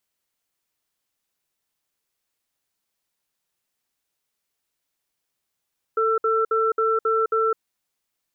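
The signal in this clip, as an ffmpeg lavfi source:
-f lavfi -i "aevalsrc='0.0944*(sin(2*PI*445*t)+sin(2*PI*1340*t))*clip(min(mod(t,0.27),0.21-mod(t,0.27))/0.005,0,1)':d=1.56:s=44100"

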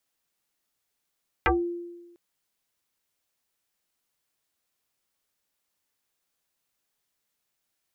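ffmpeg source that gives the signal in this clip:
-f lavfi -i "aevalsrc='0.141*pow(10,-3*t/1.19)*sin(2*PI*346*t+6.2*pow(10,-3*t/0.2)*sin(2*PI*1.19*346*t))':d=0.7:s=44100"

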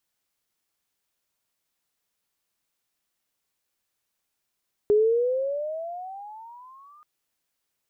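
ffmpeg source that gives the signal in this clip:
-f lavfi -i "aevalsrc='pow(10,(-15-34.5*t/2.13)/20)*sin(2*PI*411*2.13/(19*log(2)/12)*(exp(19*log(2)/12*t/2.13)-1))':d=2.13:s=44100"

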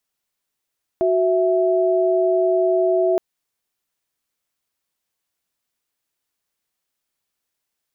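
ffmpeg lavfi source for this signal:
-f lavfi -i "aevalsrc='0.133*(sin(2*PI*369.99*t)+sin(2*PI*659.26*t))':d=2.17:s=44100"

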